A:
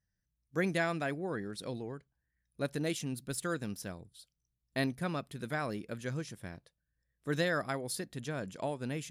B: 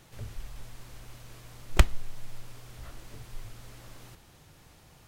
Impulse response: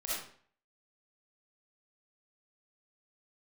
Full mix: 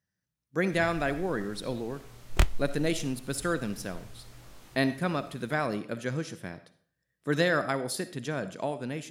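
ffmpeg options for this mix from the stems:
-filter_complex "[0:a]highpass=130,highshelf=frequency=6200:gain=-4.5,volume=2.5dB,asplit=2[link_01][link_02];[link_02]volume=-14.5dB[link_03];[1:a]flanger=delay=20:depth=7.4:speed=1.5,adelay=600,volume=-2.5dB[link_04];[2:a]atrim=start_sample=2205[link_05];[link_03][link_05]afir=irnorm=-1:irlink=0[link_06];[link_01][link_04][link_06]amix=inputs=3:normalize=0,dynaudnorm=framelen=140:gausssize=11:maxgain=3dB"

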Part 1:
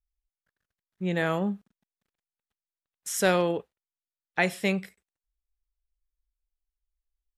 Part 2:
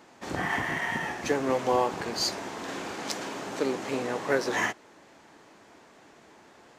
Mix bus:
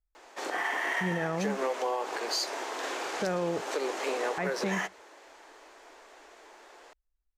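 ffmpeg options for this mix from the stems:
ffmpeg -i stem1.wav -i stem2.wav -filter_complex "[0:a]lowpass=1600,volume=3dB[link_01];[1:a]highpass=frequency=380:width=0.5412,highpass=frequency=380:width=1.3066,adelay=150,volume=2.5dB[link_02];[link_01][link_02]amix=inputs=2:normalize=0,alimiter=limit=-21dB:level=0:latency=1:release=156" out.wav

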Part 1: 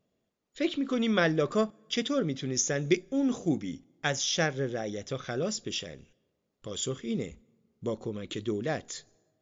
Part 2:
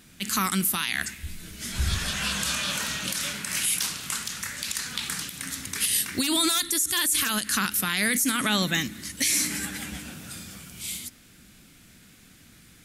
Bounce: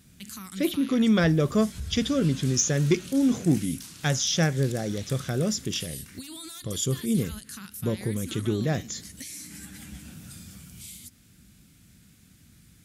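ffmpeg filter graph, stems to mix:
ffmpeg -i stem1.wav -i stem2.wav -filter_complex "[0:a]volume=0.5dB[link_01];[1:a]acompressor=threshold=-36dB:ratio=3,volume=-9.5dB[link_02];[link_01][link_02]amix=inputs=2:normalize=0,asoftclip=type=tanh:threshold=-13.5dB,highpass=44,bass=frequency=250:gain=12,treble=frequency=4000:gain=5" out.wav

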